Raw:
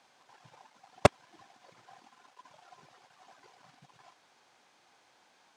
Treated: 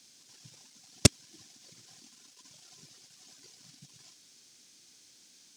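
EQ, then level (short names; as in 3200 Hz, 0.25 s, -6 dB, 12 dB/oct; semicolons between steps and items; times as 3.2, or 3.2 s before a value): EQ curve 280 Hz 0 dB, 840 Hz -22 dB, 3800 Hz +2 dB, 5400 Hz +10 dB; +5.5 dB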